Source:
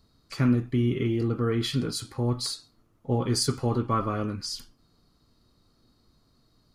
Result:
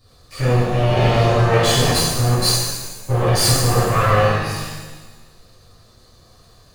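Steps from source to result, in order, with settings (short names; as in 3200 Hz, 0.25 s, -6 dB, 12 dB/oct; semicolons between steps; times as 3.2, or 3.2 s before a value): minimum comb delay 1.7 ms; level quantiser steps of 17 dB; shimmer reverb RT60 1.2 s, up +7 st, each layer -8 dB, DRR -10.5 dB; gain +8.5 dB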